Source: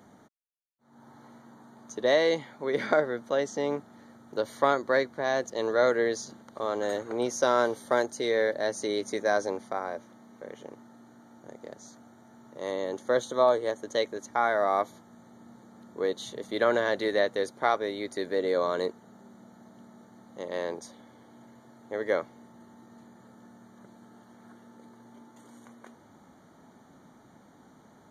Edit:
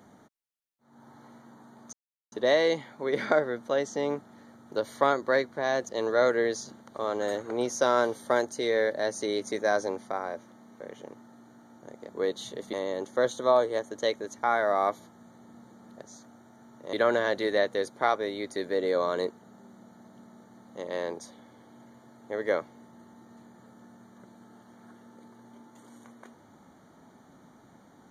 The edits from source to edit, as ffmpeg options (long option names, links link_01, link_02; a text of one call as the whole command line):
ffmpeg -i in.wav -filter_complex "[0:a]asplit=6[link_01][link_02][link_03][link_04][link_05][link_06];[link_01]atrim=end=1.93,asetpts=PTS-STARTPTS,afade=type=out:start_time=1.926:duration=0.004:curve=hsin,apad=pad_dur=0.39[link_07];[link_02]atrim=start=1.93:end=11.702,asetpts=PTS-STARTPTS,afade=type=in:duration=0.004:curve=hsin[link_08];[link_03]atrim=start=15.898:end=16.542[link_09];[link_04]atrim=start=12.648:end=15.902[link_10];[link_05]atrim=start=11.698:end=12.652[link_11];[link_06]atrim=start=16.538[link_12];[link_07][link_08]concat=n=2:v=0:a=1[link_13];[link_13][link_09]acrossfade=duration=0.004:curve1=hsin:curve2=hsin[link_14];[link_14][link_10]acrossfade=duration=0.004:curve1=hsin:curve2=hsin[link_15];[link_15][link_11]acrossfade=duration=0.004:curve1=hsin:curve2=hsin[link_16];[link_16][link_12]acrossfade=duration=0.004:curve1=hsin:curve2=hsin" out.wav